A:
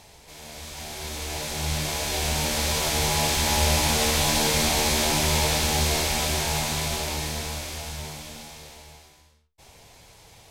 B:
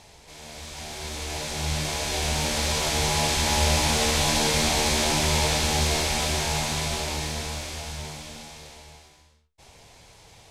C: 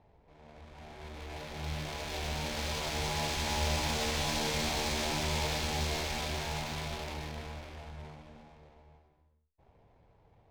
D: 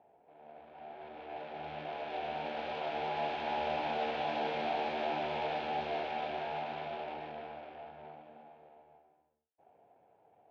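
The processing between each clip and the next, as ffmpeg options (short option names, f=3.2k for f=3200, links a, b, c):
-af "lowpass=10k"
-af "adynamicsmooth=sensitivity=6:basefreq=900,volume=-9dB"
-af "highpass=310,equalizer=f=730:t=q:w=4:g=9,equalizer=f=1.1k:t=q:w=4:g=-8,equalizer=f=2k:t=q:w=4:g=-8,lowpass=f=2.7k:w=0.5412,lowpass=f=2.7k:w=1.3066"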